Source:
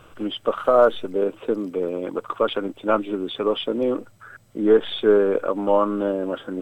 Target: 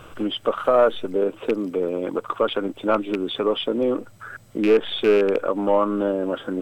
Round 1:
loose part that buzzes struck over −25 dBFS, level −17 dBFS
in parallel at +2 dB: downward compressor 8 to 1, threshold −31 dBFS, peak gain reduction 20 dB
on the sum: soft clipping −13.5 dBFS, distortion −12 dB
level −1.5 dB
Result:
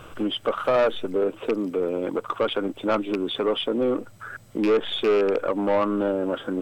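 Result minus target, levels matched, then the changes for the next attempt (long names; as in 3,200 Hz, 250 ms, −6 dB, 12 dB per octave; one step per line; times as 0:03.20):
soft clipping: distortion +13 dB
change: soft clipping −4 dBFS, distortion −25 dB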